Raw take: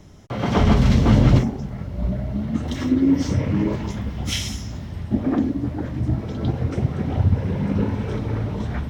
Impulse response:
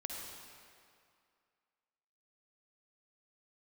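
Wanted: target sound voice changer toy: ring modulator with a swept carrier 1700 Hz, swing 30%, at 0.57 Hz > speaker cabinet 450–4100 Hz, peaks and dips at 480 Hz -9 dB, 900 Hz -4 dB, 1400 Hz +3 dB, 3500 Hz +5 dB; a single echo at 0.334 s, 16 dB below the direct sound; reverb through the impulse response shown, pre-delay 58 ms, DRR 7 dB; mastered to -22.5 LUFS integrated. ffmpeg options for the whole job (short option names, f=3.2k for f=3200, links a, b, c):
-filter_complex "[0:a]aecho=1:1:334:0.158,asplit=2[a][b];[1:a]atrim=start_sample=2205,adelay=58[c];[b][c]afir=irnorm=-1:irlink=0,volume=-7dB[d];[a][d]amix=inputs=2:normalize=0,aeval=exprs='val(0)*sin(2*PI*1700*n/s+1700*0.3/0.57*sin(2*PI*0.57*n/s))':c=same,highpass=450,equalizer=f=480:t=q:w=4:g=-9,equalizer=f=900:t=q:w=4:g=-4,equalizer=f=1.4k:t=q:w=4:g=3,equalizer=f=3.5k:t=q:w=4:g=5,lowpass=f=4.1k:w=0.5412,lowpass=f=4.1k:w=1.3066,volume=-2dB"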